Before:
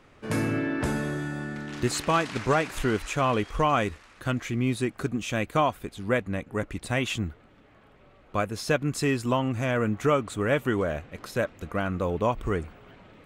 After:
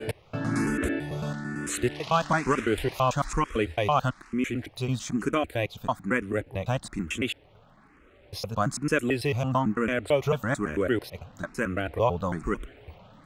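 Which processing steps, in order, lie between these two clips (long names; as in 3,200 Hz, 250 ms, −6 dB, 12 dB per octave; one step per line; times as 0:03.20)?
slices reordered back to front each 111 ms, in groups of 3
frequency shifter mixed with the dry sound +1.1 Hz
level +2.5 dB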